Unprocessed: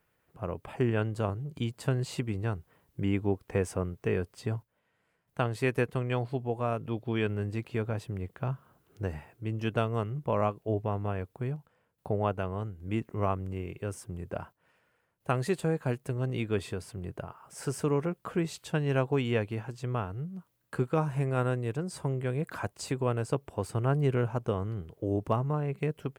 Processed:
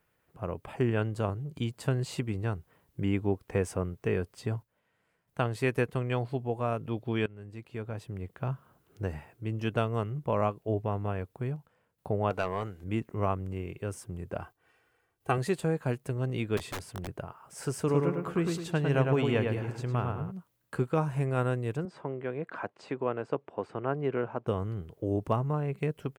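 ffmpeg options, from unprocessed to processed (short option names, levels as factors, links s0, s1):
-filter_complex "[0:a]asettb=1/sr,asplit=3[s0][s1][s2];[s0]atrim=end=12.304[s3];[s1]atrim=start=12.3:end=12.84,asetpts=PTS-STARTPTS,afade=t=in:d=0.004:c=qsin,afade=t=out:st=0.536:d=0.004:c=qsin,asplit=2[s4][s5];[s5]highpass=f=720:p=1,volume=6.31,asoftclip=type=tanh:threshold=0.106[s6];[s4][s6]amix=inputs=2:normalize=0,lowpass=f=6500:p=1,volume=0.501[s7];[s2]atrim=start=12.836[s8];[s3][s7]acrossfade=d=0.004:c1=hsin:c2=qsin[s9];[s9][s8]acrossfade=d=0.004:c1=qsin:c2=hsin,asettb=1/sr,asplit=3[s10][s11][s12];[s10]atrim=end=14.414[s13];[s11]atrim=start=14.41:end=15.38,asetpts=PTS-STARTPTS,afade=t=in:d=0.004:c=qsin,afade=t=out:st=0.966:d=0.004:c=qsin,aecho=1:1:2.6:0.68,atrim=end_sample=42777[s14];[s12]atrim=start=15.376[s15];[s13][s14]acrossfade=d=0.004:c1=hsin:c2=qsin[s16];[s16][s15]acrossfade=d=0.004:c1=qsin:c2=hsin,asettb=1/sr,asplit=3[s17][s18][s19];[s17]atrim=end=16.574[s20];[s18]atrim=start=16.57:end=17.08,asetpts=PTS-STARTPTS,afade=t=in:d=0.004:c=qsin,afade=t=out:st=0.506:d=0.004:c=qsin,aeval=exprs='(mod(35.5*val(0)+1,2)-1)/35.5':c=same[s21];[s19]atrim=start=17.076[s22];[s20][s21]acrossfade=d=0.004:c1=hsin:c2=qsin[s23];[s23][s22]acrossfade=d=0.004:c1=qsin:c2=hsin,asplit=3[s24][s25][s26];[s24]afade=t=out:st=17.87:d=0.02[s27];[s25]asplit=2[s28][s29];[s29]adelay=105,lowpass=f=3000:p=1,volume=0.668,asplit=2[s30][s31];[s31]adelay=105,lowpass=f=3000:p=1,volume=0.43,asplit=2[s32][s33];[s33]adelay=105,lowpass=f=3000:p=1,volume=0.43,asplit=2[s34][s35];[s35]adelay=105,lowpass=f=3000:p=1,volume=0.43,asplit=2[s36][s37];[s37]adelay=105,lowpass=f=3000:p=1,volume=0.43[s38];[s28][s30][s32][s34][s36][s38]amix=inputs=6:normalize=0,afade=t=in:st=17.87:d=0.02,afade=t=out:st=20.3:d=0.02[s39];[s26]afade=t=in:st=20.3:d=0.02[s40];[s27][s39][s40]amix=inputs=3:normalize=0,asettb=1/sr,asplit=3[s41][s42][s43];[s41]atrim=end=21.854[s44];[s42]atrim=start=21.85:end=24.47,asetpts=PTS-STARTPTS,afade=t=in:d=0.004:c=qsin,afade=t=out:st=2.616:d=0.004:c=qsin,highpass=240,lowpass=2400[s45];[s43]atrim=start=24.466[s46];[s44][s45]acrossfade=d=0.004:c1=hsin:c2=qsin[s47];[s47][s46]acrossfade=d=0.004:c1=qsin:c2=hsin,asplit=2[s48][s49];[s48]atrim=end=7.26,asetpts=PTS-STARTPTS,afade=t=out:st=7.256:d=0.004:c=hsin:silence=0.112202[s50];[s49]atrim=start=7.26,asetpts=PTS-STARTPTS,afade=t=in:d=1.27:silence=0.112202[s51];[s50][s51]concat=n=2:v=0:a=1"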